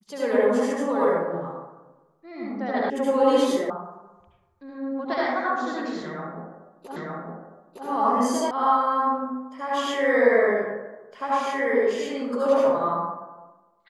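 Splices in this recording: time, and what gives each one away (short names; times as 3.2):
2.9 sound cut off
3.7 sound cut off
6.96 repeat of the last 0.91 s
8.51 sound cut off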